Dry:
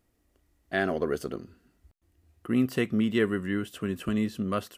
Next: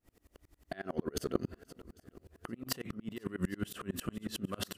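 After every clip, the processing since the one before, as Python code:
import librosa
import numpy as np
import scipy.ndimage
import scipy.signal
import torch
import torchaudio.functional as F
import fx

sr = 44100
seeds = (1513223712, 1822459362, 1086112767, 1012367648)

y = fx.over_compress(x, sr, threshold_db=-36.0, ratio=-1.0)
y = fx.echo_swing(y, sr, ms=798, ratio=1.5, feedback_pct=38, wet_db=-18.0)
y = fx.tremolo_decay(y, sr, direction='swelling', hz=11.0, depth_db=31)
y = y * 10.0 ** (5.5 / 20.0)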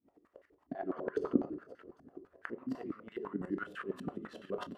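y = fx.room_shoebox(x, sr, seeds[0], volume_m3=120.0, walls='mixed', distance_m=0.35)
y = fx.filter_held_bandpass(y, sr, hz=12.0, low_hz=250.0, high_hz=1700.0)
y = y * 10.0 ** (10.0 / 20.0)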